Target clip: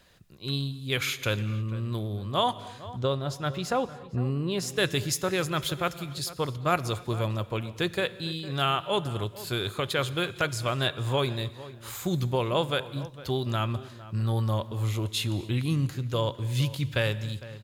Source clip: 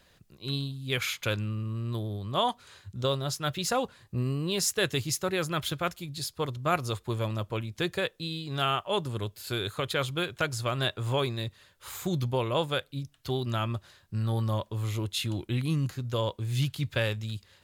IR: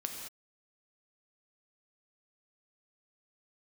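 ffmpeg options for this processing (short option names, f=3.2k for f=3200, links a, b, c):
-filter_complex "[0:a]asettb=1/sr,asplit=3[a][b][c];[a]atrim=end=2.994[d];[b]atrim=start=2.99:end=4.77,asetpts=PTS-STARTPTS,afade=t=in:d=0.004:c=qsin,afade=t=out:st=1.776:d=0.004:c=qsin,highshelf=f=3.4k:g=-11.5[e];[c]atrim=start=4.766[f];[d][e]acrossfade=d=0.004:c1=hsin:c2=qsin[g];[g][f]acrossfade=d=0.004:c1=qsin:c2=hsin,asplit=2[h][i];[i]adelay=455,lowpass=f=1.7k:p=1,volume=-16dB,asplit=2[j][k];[k]adelay=455,lowpass=f=1.7k:p=1,volume=0.28,asplit=2[l][m];[m]adelay=455,lowpass=f=1.7k:p=1,volume=0.28[n];[h][j][l][n]amix=inputs=4:normalize=0,asplit=2[o][p];[1:a]atrim=start_sample=2205,asetrate=34398,aresample=44100[q];[p][q]afir=irnorm=-1:irlink=0,volume=-13.5dB[r];[o][r]amix=inputs=2:normalize=0"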